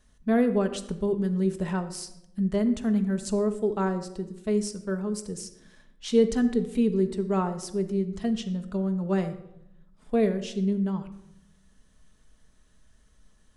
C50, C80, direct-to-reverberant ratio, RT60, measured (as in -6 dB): 12.0 dB, 14.5 dB, 6.5 dB, 0.80 s